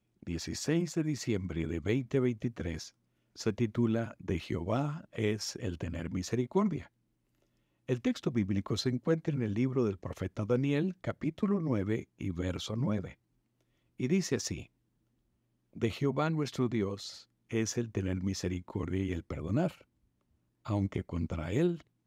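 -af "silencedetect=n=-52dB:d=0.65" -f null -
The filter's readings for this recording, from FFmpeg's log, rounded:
silence_start: 6.87
silence_end: 7.88 | silence_duration: 1.02
silence_start: 13.14
silence_end: 13.99 | silence_duration: 0.86
silence_start: 14.66
silence_end: 15.73 | silence_duration: 1.07
silence_start: 19.81
silence_end: 20.65 | silence_duration: 0.84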